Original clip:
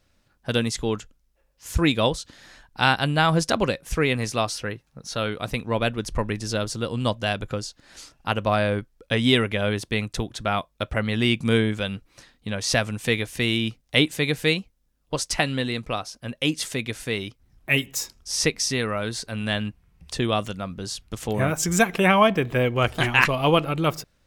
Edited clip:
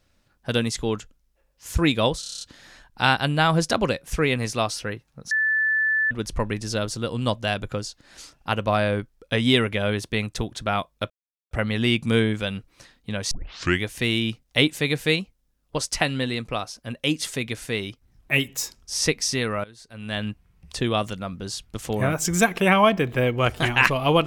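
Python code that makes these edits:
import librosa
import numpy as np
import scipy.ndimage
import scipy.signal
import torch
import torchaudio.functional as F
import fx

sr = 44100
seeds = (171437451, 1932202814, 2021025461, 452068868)

y = fx.edit(x, sr, fx.stutter(start_s=2.2, slice_s=0.03, count=8),
    fx.bleep(start_s=5.1, length_s=0.8, hz=1750.0, db=-18.5),
    fx.insert_silence(at_s=10.89, length_s=0.41),
    fx.tape_start(start_s=12.69, length_s=0.53),
    fx.fade_in_from(start_s=19.02, length_s=0.63, curve='qua', floor_db=-19.5), tone=tone)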